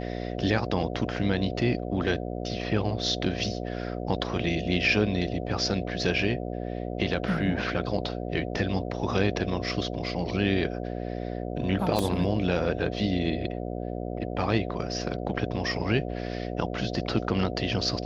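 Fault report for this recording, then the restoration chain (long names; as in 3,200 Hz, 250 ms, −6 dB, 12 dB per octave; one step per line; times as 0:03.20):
mains buzz 60 Hz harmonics 12 −33 dBFS
0:11.99: click −12 dBFS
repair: click removal
hum removal 60 Hz, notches 12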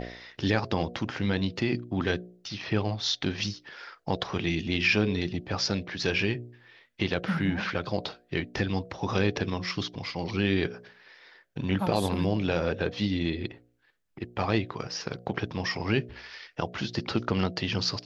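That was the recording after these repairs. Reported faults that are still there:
none of them is left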